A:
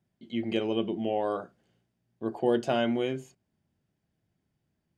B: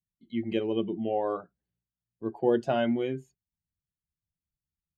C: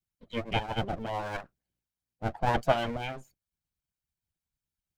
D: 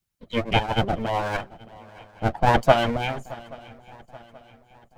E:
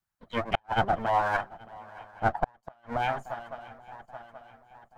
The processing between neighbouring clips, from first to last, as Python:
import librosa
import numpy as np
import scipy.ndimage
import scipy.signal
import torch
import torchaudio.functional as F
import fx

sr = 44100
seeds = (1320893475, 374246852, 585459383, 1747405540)

y1 = fx.bin_expand(x, sr, power=1.5)
y1 = fx.high_shelf(y1, sr, hz=3700.0, db=-12.0)
y1 = y1 * 10.0 ** (2.5 / 20.0)
y2 = fx.lower_of_two(y1, sr, delay_ms=1.3)
y2 = fx.hpss(y2, sr, part='harmonic', gain_db=-14)
y2 = y2 * 10.0 ** (7.0 / 20.0)
y3 = fx.echo_swing(y2, sr, ms=829, ratio=3, feedback_pct=44, wet_db=-21.5)
y3 = y3 * 10.0 ** (8.5 / 20.0)
y4 = fx.band_shelf(y3, sr, hz=1100.0, db=10.0, octaves=1.7)
y4 = fx.gate_flip(y4, sr, shuts_db=-4.0, range_db=-41)
y4 = y4 * 10.0 ** (-7.5 / 20.0)